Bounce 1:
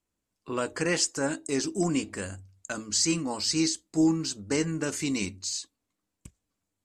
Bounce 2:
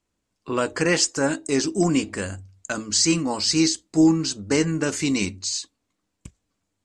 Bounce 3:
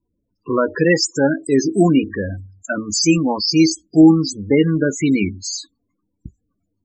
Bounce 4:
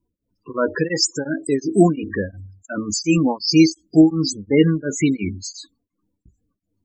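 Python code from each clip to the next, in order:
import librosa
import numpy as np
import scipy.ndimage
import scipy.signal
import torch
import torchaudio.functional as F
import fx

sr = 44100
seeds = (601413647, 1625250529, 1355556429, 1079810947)

y1 = scipy.signal.sosfilt(scipy.signal.butter(2, 8200.0, 'lowpass', fs=sr, output='sos'), x)
y1 = y1 * 10.0 ** (6.5 / 20.0)
y2 = fx.spec_topn(y1, sr, count=16)
y2 = y2 * 10.0 ** (7.0 / 20.0)
y3 = y2 * np.abs(np.cos(np.pi * 2.8 * np.arange(len(y2)) / sr))
y3 = y3 * 10.0 ** (1.5 / 20.0)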